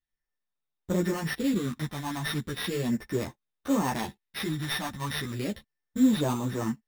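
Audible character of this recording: a buzz of ramps at a fixed pitch in blocks of 8 samples; phasing stages 4, 0.36 Hz, lowest notch 430–4900 Hz; aliases and images of a low sample rate 7.3 kHz, jitter 0%; a shimmering, thickened sound

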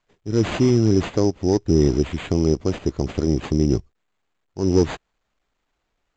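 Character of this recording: aliases and images of a low sample rate 5.5 kHz, jitter 0%; µ-law

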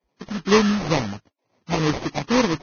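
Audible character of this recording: phasing stages 12, 2.2 Hz, lowest notch 420–4800 Hz; aliases and images of a low sample rate 1.5 kHz, jitter 20%; Vorbis

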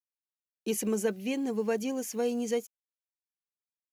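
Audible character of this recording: a quantiser's noise floor 10-bit, dither none

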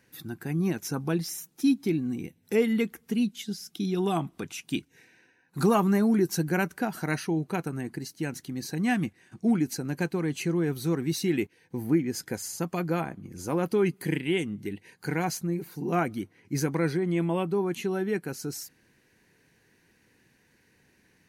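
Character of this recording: noise floor -66 dBFS; spectral tilt -6.0 dB/octave

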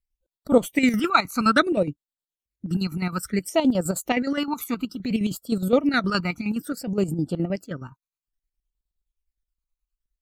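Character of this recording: phasing stages 12, 0.59 Hz, lowest notch 540–2100 Hz; chopped level 9.6 Hz, depth 60%, duty 55%

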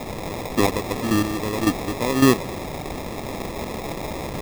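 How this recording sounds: chopped level 1.8 Hz, depth 65%, duty 20%; a quantiser's noise floor 6-bit, dither triangular; phasing stages 8, 0.62 Hz, lowest notch 710–2400 Hz; aliases and images of a low sample rate 1.5 kHz, jitter 0%

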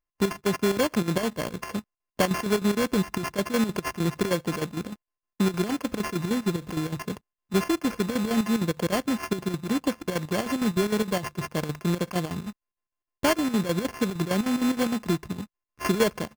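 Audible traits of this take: a buzz of ramps at a fixed pitch in blocks of 16 samples; chopped level 6.5 Hz, depth 65%, duty 65%; aliases and images of a low sample rate 3.8 kHz, jitter 0%

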